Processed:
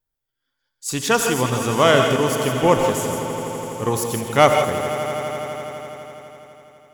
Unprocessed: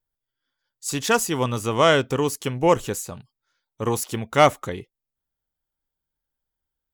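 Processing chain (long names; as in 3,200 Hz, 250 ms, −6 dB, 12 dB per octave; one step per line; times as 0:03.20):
echo that builds up and dies away 83 ms, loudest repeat 5, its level −16 dB
reverb whose tail is shaped and stops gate 190 ms rising, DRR 4.5 dB
level +1.5 dB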